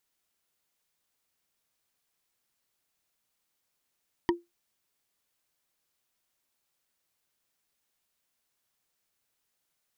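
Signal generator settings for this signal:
struck wood, lowest mode 345 Hz, decay 0.19 s, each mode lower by 3.5 dB, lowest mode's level −18 dB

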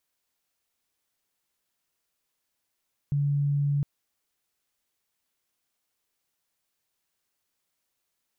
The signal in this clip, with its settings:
tone sine 143 Hz −22 dBFS 0.71 s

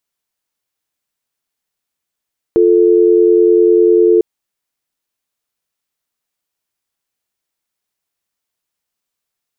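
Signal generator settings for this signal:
call progress tone dial tone, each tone −9 dBFS 1.65 s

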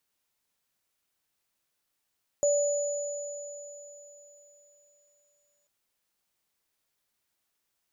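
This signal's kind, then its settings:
inharmonic partials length 3.24 s, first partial 580 Hz, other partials 6,930 Hz, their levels −7 dB, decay 3.38 s, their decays 4.23 s, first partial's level −21 dB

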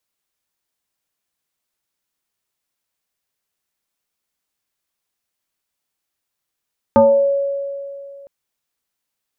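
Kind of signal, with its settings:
two-operator FM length 1.31 s, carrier 558 Hz, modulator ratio 0.59, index 1.3, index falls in 0.53 s exponential, decay 2.53 s, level −6 dB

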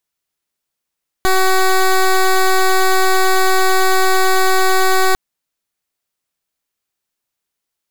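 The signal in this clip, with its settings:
pulse wave 377 Hz, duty 13% −11.5 dBFS 3.90 s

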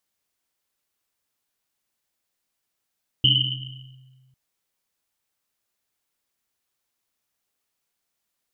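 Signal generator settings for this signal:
drum after Risset, pitch 130 Hz, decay 1.83 s, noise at 3,000 Hz, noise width 230 Hz, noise 65%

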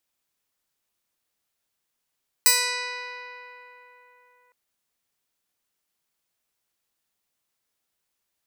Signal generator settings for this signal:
Karplus-Strong string B4, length 2.06 s, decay 3.94 s, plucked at 0.15, bright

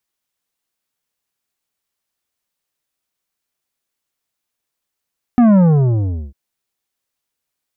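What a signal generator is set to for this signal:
bass drop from 250 Hz, over 0.95 s, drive 10 dB, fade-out 0.77 s, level −8 dB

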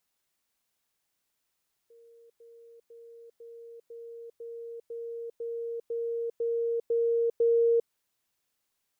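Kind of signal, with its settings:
level staircase 465 Hz −53 dBFS, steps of 3 dB, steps 12, 0.40 s 0.10 s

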